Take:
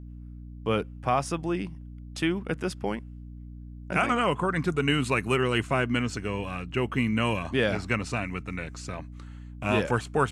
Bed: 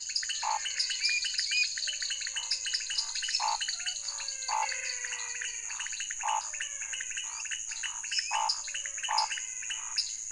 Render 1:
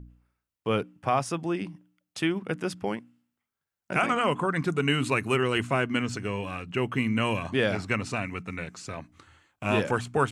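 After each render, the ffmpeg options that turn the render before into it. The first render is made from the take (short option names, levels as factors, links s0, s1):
-af "bandreject=f=60:t=h:w=4,bandreject=f=120:t=h:w=4,bandreject=f=180:t=h:w=4,bandreject=f=240:t=h:w=4,bandreject=f=300:t=h:w=4"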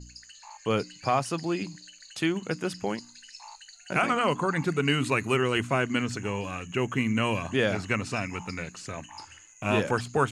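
-filter_complex "[1:a]volume=0.158[s0];[0:a][s0]amix=inputs=2:normalize=0"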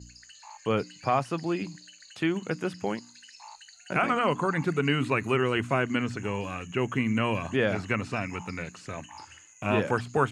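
-filter_complex "[0:a]acrossover=split=3100[s0][s1];[s1]acompressor=threshold=0.00398:ratio=4:attack=1:release=60[s2];[s0][s2]amix=inputs=2:normalize=0,highpass=54"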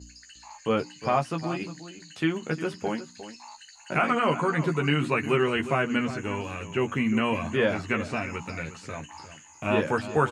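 -filter_complex "[0:a]asplit=2[s0][s1];[s1]adelay=13,volume=0.562[s2];[s0][s2]amix=inputs=2:normalize=0,asplit=2[s3][s4];[s4]adelay=355.7,volume=0.224,highshelf=f=4000:g=-8[s5];[s3][s5]amix=inputs=2:normalize=0"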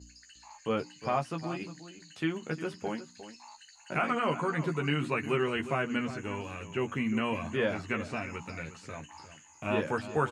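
-af "volume=0.531"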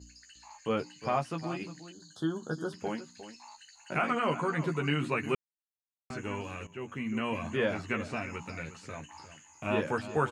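-filter_complex "[0:a]asettb=1/sr,asplit=3[s0][s1][s2];[s0]atrim=end=1.924[s3];[s1]atrim=start=1.92:end=2.73,asetpts=PTS-STARTPTS,afade=t=in:d=0.004:c=qsin,afade=t=out:st=0.806:d=0.004:c=qsin,asuperstop=centerf=2300:order=12:qfactor=1.5[s4];[s2]atrim=start=2.726[s5];[s3][s4]acrossfade=d=0.004:c1=hsin:c2=qsin[s6];[s6][s5]acrossfade=d=0.004:c1=qsin:c2=hsin,asplit=4[s7][s8][s9][s10];[s7]atrim=end=5.35,asetpts=PTS-STARTPTS,afade=t=out:st=5.346:d=0.004:c=hsin[s11];[s8]atrim=start=5.35:end=6.1,asetpts=PTS-STARTPTS,volume=0[s12];[s9]atrim=start=6.1:end=6.67,asetpts=PTS-STARTPTS,afade=t=in:d=0.004:c=hsin,afade=t=out:st=0.566:d=0.004:c=hsin:silence=0.237137[s13];[s10]atrim=start=6.67,asetpts=PTS-STARTPTS,afade=t=in:d=0.78:silence=0.237137[s14];[s11][s12][s13][s14]concat=n=4:v=0:a=1"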